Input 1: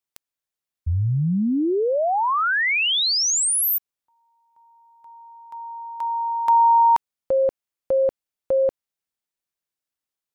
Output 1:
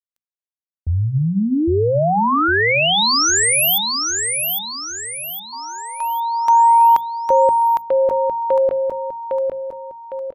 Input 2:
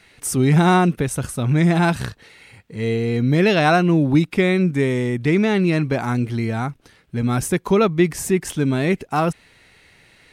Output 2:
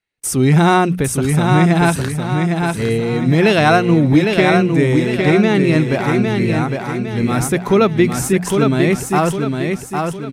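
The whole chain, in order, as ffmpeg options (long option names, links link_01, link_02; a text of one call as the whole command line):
ffmpeg -i in.wav -filter_complex "[0:a]bandreject=frequency=60:width_type=h:width=6,bandreject=frequency=120:width_type=h:width=6,bandreject=frequency=180:width_type=h:width=6,bandreject=frequency=240:width_type=h:width=6,agate=range=-34dB:threshold=-40dB:ratio=16:release=446:detection=peak,asplit=2[link_01][link_02];[link_02]aecho=0:1:807|1614|2421|3228|4035:0.596|0.262|0.115|0.0507|0.0223[link_03];[link_01][link_03]amix=inputs=2:normalize=0,volume=3.5dB" out.wav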